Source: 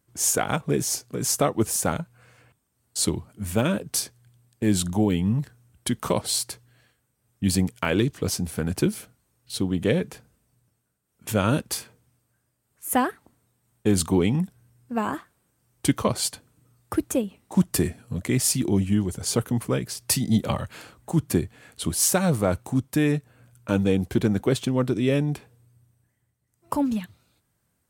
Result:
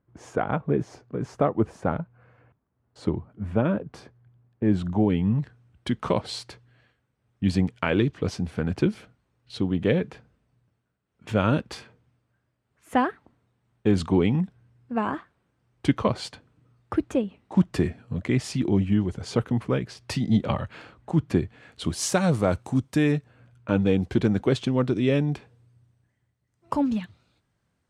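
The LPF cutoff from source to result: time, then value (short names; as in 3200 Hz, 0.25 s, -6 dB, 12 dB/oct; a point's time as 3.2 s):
4.65 s 1400 Hz
5.4 s 3200 Hz
21.32 s 3200 Hz
22.27 s 6400 Hz
23 s 6400 Hz
23.7 s 2800 Hz
24.01 s 4900 Hz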